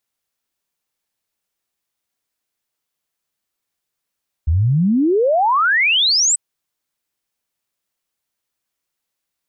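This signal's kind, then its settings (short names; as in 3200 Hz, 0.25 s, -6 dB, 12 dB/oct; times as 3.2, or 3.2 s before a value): log sweep 73 Hz -> 8200 Hz 1.89 s -12 dBFS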